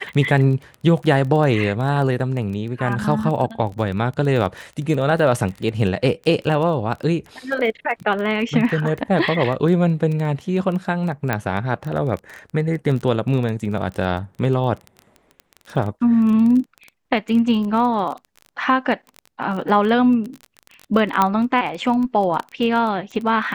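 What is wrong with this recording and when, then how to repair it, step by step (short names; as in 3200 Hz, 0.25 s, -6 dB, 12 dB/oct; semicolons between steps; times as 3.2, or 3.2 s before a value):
crackle 20/s -26 dBFS
11.33 pop -8 dBFS
21.22 pop -4 dBFS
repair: de-click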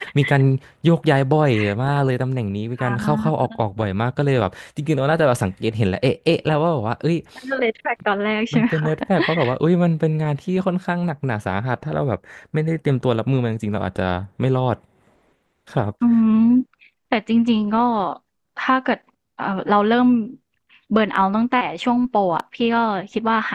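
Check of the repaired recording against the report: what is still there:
none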